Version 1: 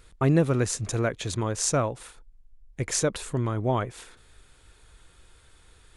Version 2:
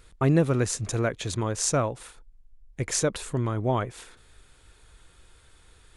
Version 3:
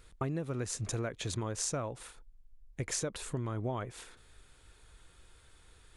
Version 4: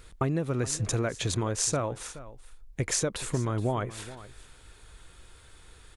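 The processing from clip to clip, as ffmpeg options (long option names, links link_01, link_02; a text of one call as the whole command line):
ffmpeg -i in.wav -af anull out.wav
ffmpeg -i in.wav -af "acompressor=threshold=-27dB:ratio=12,volume=-4dB" out.wav
ffmpeg -i in.wav -af "aecho=1:1:423:0.15,volume=7dB" out.wav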